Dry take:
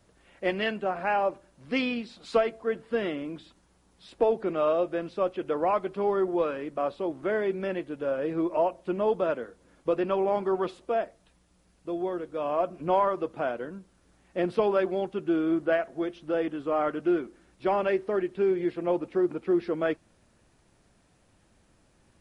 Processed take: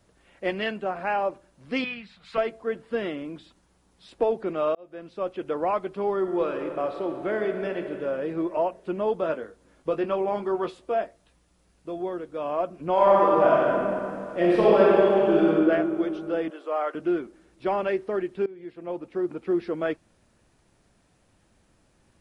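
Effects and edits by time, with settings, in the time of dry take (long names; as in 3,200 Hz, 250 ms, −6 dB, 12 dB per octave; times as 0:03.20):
0:01.84–0:02.38: drawn EQ curve 190 Hz 0 dB, 270 Hz −17 dB, 2,000 Hz +5 dB, 5,700 Hz −10 dB
0:04.75–0:05.40: fade in
0:06.16–0:07.90: thrown reverb, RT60 2.7 s, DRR 5 dB
0:09.21–0:12.00: double-tracking delay 19 ms −8.5 dB
0:12.93–0:15.47: thrown reverb, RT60 2.6 s, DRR −7.5 dB
0:16.50–0:16.95: high-pass filter 430 Hz 24 dB per octave
0:18.46–0:19.48: fade in, from −21 dB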